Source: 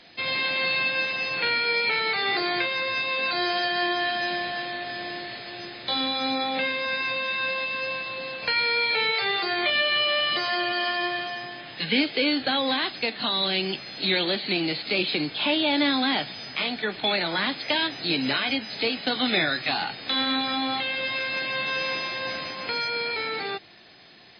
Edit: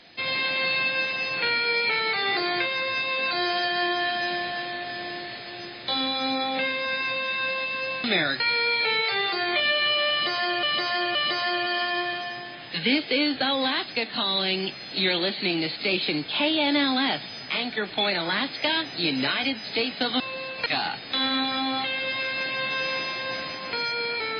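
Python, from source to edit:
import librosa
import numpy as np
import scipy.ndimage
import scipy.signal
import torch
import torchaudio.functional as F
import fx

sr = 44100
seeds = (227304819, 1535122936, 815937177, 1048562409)

y = fx.edit(x, sr, fx.swap(start_s=8.04, length_s=0.46, other_s=19.26, other_length_s=0.36),
    fx.repeat(start_s=10.21, length_s=0.52, count=3), tone=tone)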